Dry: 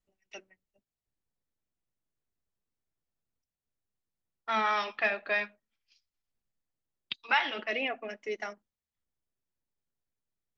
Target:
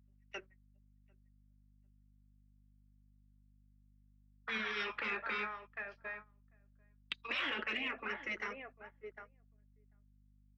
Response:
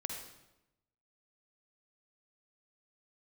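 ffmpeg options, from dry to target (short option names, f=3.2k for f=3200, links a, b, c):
-filter_complex "[0:a]acrossover=split=460 2000:gain=0.178 1 0.1[a][b][c];[a][b][c]amix=inputs=3:normalize=0,asplit=2[d][e];[e]adelay=747,lowpass=f=1.4k:p=1,volume=-16dB,asplit=2[f][g];[g]adelay=747,lowpass=f=1.4k:p=1,volume=0.2[h];[d][f][h]amix=inputs=3:normalize=0,agate=range=-16dB:threshold=-57dB:ratio=16:detection=peak,afftfilt=real='re*lt(hypot(re,im),0.0398)':imag='im*lt(hypot(re,im),0.0398)':win_size=1024:overlap=0.75,asplit=2[i][j];[j]alimiter=level_in=17.5dB:limit=-24dB:level=0:latency=1:release=275,volume=-17.5dB,volume=-0.5dB[k];[i][k]amix=inputs=2:normalize=0,asoftclip=type=tanh:threshold=-27dB,equalizer=f=720:w=1.3:g=-13,aeval=exprs='val(0)+0.000224*(sin(2*PI*50*n/s)+sin(2*PI*2*50*n/s)/2+sin(2*PI*3*50*n/s)/3+sin(2*PI*4*50*n/s)/4+sin(2*PI*5*50*n/s)/5)':c=same,volume=7.5dB"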